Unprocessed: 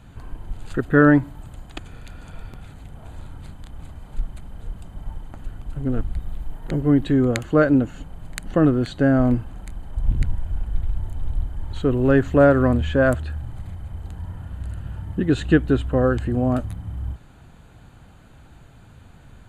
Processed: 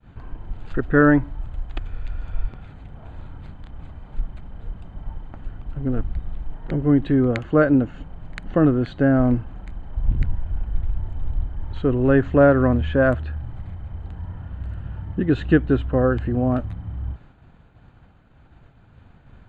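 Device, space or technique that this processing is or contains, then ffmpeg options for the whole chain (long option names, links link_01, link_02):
hearing-loss simulation: -filter_complex "[0:a]asplit=3[link_01][link_02][link_03];[link_01]afade=type=out:start_time=0.72:duration=0.02[link_04];[link_02]asubboost=boost=7.5:cutoff=73,afade=type=in:start_time=0.72:duration=0.02,afade=type=out:start_time=2.47:duration=0.02[link_05];[link_03]afade=type=in:start_time=2.47:duration=0.02[link_06];[link_04][link_05][link_06]amix=inputs=3:normalize=0,lowpass=2900,agate=range=-33dB:threshold=-42dB:ratio=3:detection=peak"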